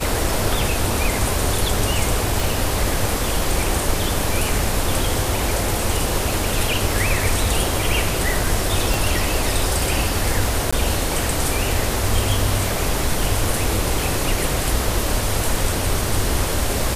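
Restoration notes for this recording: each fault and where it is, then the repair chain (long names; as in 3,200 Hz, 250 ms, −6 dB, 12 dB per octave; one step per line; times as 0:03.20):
0:02.40: click
0:08.94: click
0:10.71–0:10.72: drop-out 15 ms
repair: click removal
repair the gap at 0:10.71, 15 ms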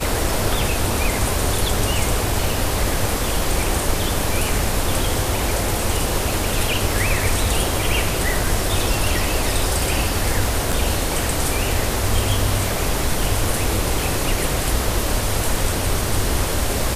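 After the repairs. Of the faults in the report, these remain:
0:08.94: click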